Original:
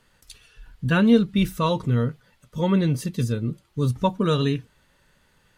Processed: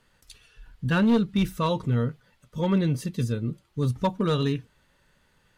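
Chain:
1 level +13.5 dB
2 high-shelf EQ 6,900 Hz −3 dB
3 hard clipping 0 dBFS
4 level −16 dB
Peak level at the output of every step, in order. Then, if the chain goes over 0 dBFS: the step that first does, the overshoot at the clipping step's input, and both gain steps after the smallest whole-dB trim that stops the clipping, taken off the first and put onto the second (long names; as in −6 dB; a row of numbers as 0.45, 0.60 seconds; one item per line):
+7.5, +7.5, 0.0, −16.0 dBFS
step 1, 7.5 dB
step 1 +5.5 dB, step 4 −8 dB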